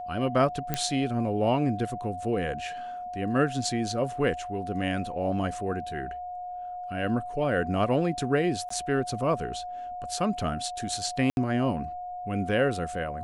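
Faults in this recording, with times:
whistle 720 Hz −34 dBFS
0:00.74: click −11 dBFS
0:08.69–0:08.70: drop-out 14 ms
0:11.30–0:11.37: drop-out 71 ms

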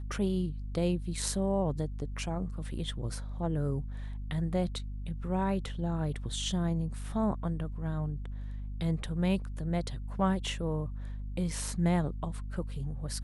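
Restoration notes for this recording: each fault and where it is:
mains hum 50 Hz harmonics 5 −38 dBFS

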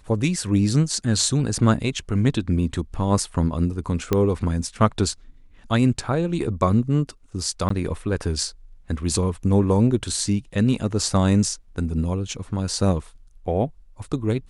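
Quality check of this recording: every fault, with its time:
0:04.13: click −7 dBFS
0:07.69–0:07.70: drop-out 14 ms

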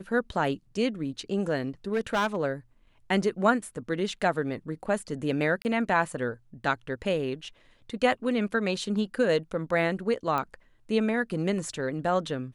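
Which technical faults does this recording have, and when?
0:01.93–0:02.36: clipping −21 dBFS
0:05.62–0:05.65: drop-out 29 ms
0:10.38: click −17 dBFS

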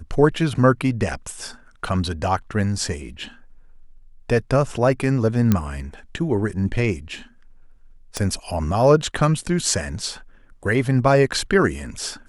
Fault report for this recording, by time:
0:05.52: click −5 dBFS
0:08.17: click −11 dBFS

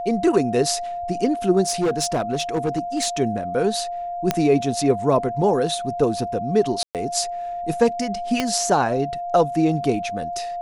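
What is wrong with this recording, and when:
whistle 700 Hz −26 dBFS
0:01.68–0:03.07: clipping −16.5 dBFS
0:04.31: click −4 dBFS
0:06.83–0:06.95: drop-out 118 ms
0:08.40: click −7 dBFS

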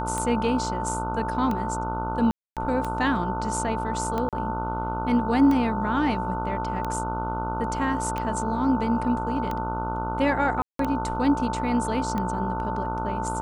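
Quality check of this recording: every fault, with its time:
mains buzz 60 Hz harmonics 25 −31 dBFS
scratch tick 45 rpm −16 dBFS
whistle 890 Hz −29 dBFS
0:02.31–0:02.57: drop-out 257 ms
0:04.29–0:04.33: drop-out 37 ms
0:10.62–0:10.79: drop-out 173 ms

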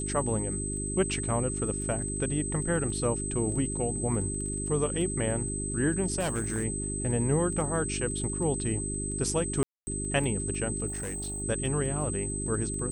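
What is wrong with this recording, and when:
surface crackle 10 per second −38 dBFS
mains hum 50 Hz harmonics 8 −35 dBFS
whistle 8,200 Hz −34 dBFS
0:06.19–0:06.65: clipping −25.5 dBFS
0:09.63–0:09.87: drop-out 240 ms
0:10.87–0:11.43: clipping −31.5 dBFS

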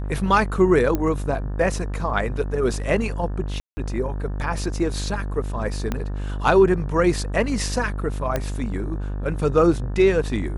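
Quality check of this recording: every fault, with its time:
mains buzz 50 Hz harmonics 36 −27 dBFS
0:00.95: click −10 dBFS
0:03.60–0:03.77: drop-out 170 ms
0:05.92: click −11 dBFS
0:08.36: click −10 dBFS

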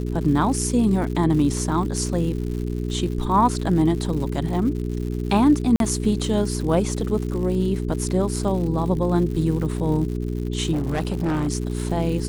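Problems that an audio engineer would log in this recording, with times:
surface crackle 180 per second −31 dBFS
mains hum 60 Hz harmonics 7 −26 dBFS
0:05.76–0:05.80: drop-out 42 ms
0:10.72–0:11.48: clipping −19 dBFS

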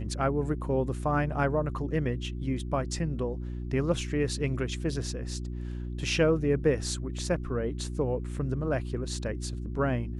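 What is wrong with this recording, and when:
mains hum 60 Hz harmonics 6 −35 dBFS

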